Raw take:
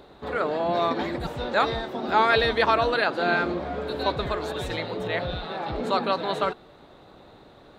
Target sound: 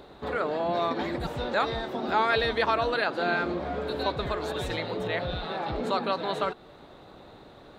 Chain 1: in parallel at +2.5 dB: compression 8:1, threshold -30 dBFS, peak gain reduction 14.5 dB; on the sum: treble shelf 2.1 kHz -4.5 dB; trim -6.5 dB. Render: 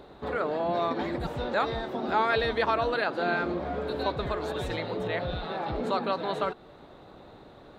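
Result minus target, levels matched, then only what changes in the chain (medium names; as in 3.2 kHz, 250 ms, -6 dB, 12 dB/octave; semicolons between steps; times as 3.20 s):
4 kHz band -2.5 dB
remove: treble shelf 2.1 kHz -4.5 dB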